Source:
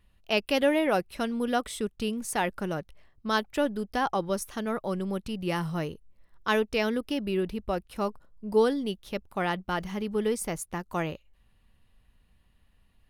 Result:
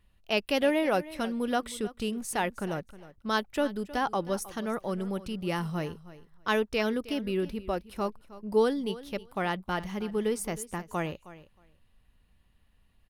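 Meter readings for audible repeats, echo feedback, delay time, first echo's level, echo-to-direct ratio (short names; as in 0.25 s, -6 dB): 2, 15%, 0.314 s, -17.0 dB, -17.0 dB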